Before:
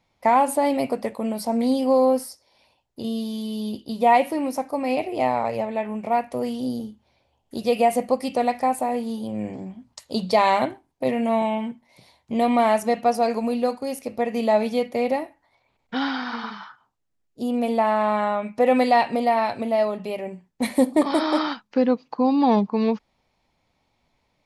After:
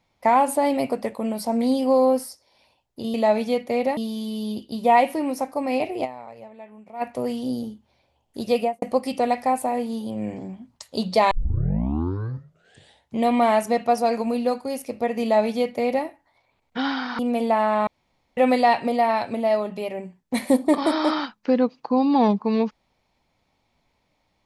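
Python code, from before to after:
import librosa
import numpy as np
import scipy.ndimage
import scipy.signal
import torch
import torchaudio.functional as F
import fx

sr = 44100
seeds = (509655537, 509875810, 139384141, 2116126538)

y = fx.studio_fade_out(x, sr, start_s=7.72, length_s=0.27)
y = fx.edit(y, sr, fx.fade_down_up(start_s=5.21, length_s=0.98, db=-16.0, fade_s=0.14, curve='exp'),
    fx.tape_start(start_s=10.48, length_s=1.86),
    fx.duplicate(start_s=14.39, length_s=0.83, to_s=3.14),
    fx.cut(start_s=16.36, length_s=1.11),
    fx.room_tone_fill(start_s=18.15, length_s=0.5), tone=tone)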